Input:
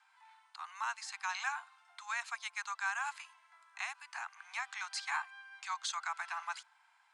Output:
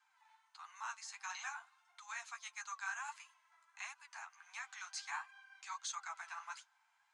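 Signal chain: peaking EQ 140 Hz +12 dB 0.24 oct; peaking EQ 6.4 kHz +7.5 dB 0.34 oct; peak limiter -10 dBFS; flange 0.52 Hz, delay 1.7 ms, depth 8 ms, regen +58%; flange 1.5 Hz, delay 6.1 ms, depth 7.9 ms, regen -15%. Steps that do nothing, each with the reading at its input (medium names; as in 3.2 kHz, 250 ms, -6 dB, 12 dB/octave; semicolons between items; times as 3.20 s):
peaking EQ 140 Hz: input has nothing below 640 Hz; peak limiter -10 dBFS: peak at its input -22.0 dBFS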